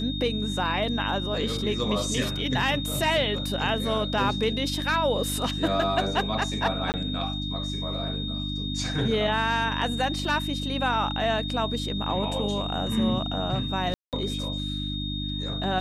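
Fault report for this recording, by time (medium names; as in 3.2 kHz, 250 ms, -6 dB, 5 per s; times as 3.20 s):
hum 50 Hz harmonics 6 -32 dBFS
whine 3.7 kHz -33 dBFS
6.92–6.94 s: dropout 19 ms
10.25 s: dropout 2.4 ms
13.94–14.13 s: dropout 188 ms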